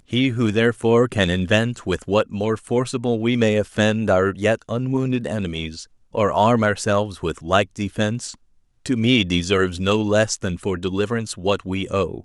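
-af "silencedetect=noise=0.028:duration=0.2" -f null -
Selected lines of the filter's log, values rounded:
silence_start: 5.83
silence_end: 6.15 | silence_duration: 0.31
silence_start: 8.33
silence_end: 8.86 | silence_duration: 0.53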